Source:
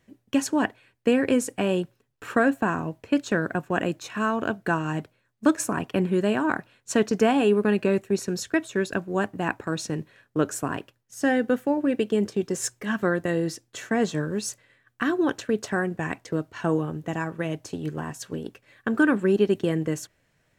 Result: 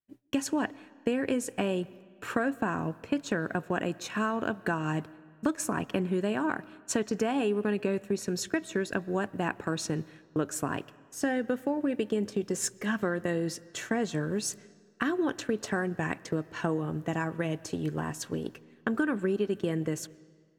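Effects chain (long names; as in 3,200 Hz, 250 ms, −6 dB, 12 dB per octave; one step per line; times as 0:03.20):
downward expander −45 dBFS
downward compressor 4 to 1, threshold −26 dBFS, peak gain reduction 10 dB
on a send: convolution reverb RT60 1.9 s, pre-delay 80 ms, DRR 21 dB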